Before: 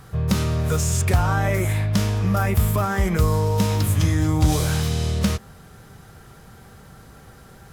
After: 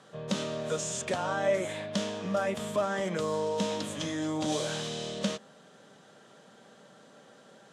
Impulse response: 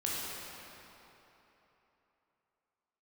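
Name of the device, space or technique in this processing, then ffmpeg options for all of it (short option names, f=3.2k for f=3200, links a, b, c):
television speaker: -af "highpass=f=210:w=0.5412,highpass=f=210:w=1.3066,equalizer=f=360:t=q:w=4:g=-4,equalizer=f=590:t=q:w=4:g=10,equalizer=f=1.3k:t=q:w=4:g=-4,equalizer=f=2.2k:t=q:w=4:g=-5,equalizer=f=3.3k:t=q:w=4:g=5,equalizer=f=5k:t=q:w=4:g=-4,lowpass=f=7.9k:w=0.5412,lowpass=f=7.9k:w=1.3066,equalizer=f=730:t=o:w=0.67:g=-4,volume=-5.5dB"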